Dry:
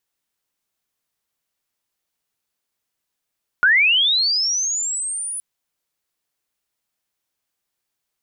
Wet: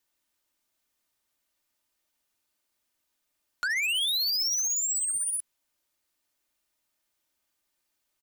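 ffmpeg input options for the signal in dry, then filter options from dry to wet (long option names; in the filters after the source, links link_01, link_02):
-f lavfi -i "aevalsrc='pow(10,(-10.5-14.5*t/1.77)/20)*sin(2*PI*(1400*t+8600*t*t/(2*1.77)))':duration=1.77:sample_rate=44100"
-filter_complex "[0:a]aecho=1:1:3.3:0.47,acrossover=split=300|3100[link_01][link_02][link_03];[link_02]acompressor=threshold=-23dB:ratio=6[link_04];[link_01][link_04][link_03]amix=inputs=3:normalize=0,asoftclip=type=tanh:threshold=-26dB"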